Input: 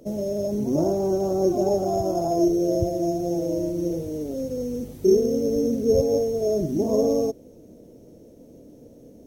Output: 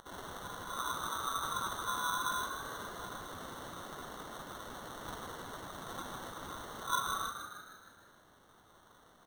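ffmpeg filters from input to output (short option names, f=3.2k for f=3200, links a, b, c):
-filter_complex "[0:a]afftfilt=real='re*between(b*sr/4096,980,4000)':imag='im*between(b*sr/4096,980,4000)':win_size=4096:overlap=0.75,acrusher=samples=18:mix=1:aa=0.000001,asplit=2[a][b];[b]asplit=7[c][d][e][f][g][h][i];[c]adelay=155,afreqshift=50,volume=-7.5dB[j];[d]adelay=310,afreqshift=100,volume=-12.4dB[k];[e]adelay=465,afreqshift=150,volume=-17.3dB[l];[f]adelay=620,afreqshift=200,volume=-22.1dB[m];[g]adelay=775,afreqshift=250,volume=-27dB[n];[h]adelay=930,afreqshift=300,volume=-31.9dB[o];[i]adelay=1085,afreqshift=350,volume=-36.8dB[p];[j][k][l][m][n][o][p]amix=inputs=7:normalize=0[q];[a][q]amix=inputs=2:normalize=0,volume=16.5dB"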